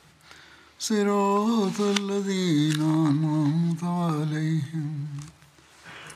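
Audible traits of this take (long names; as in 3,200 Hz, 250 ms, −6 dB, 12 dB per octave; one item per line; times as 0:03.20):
background noise floor −56 dBFS
spectral slope −6.0 dB per octave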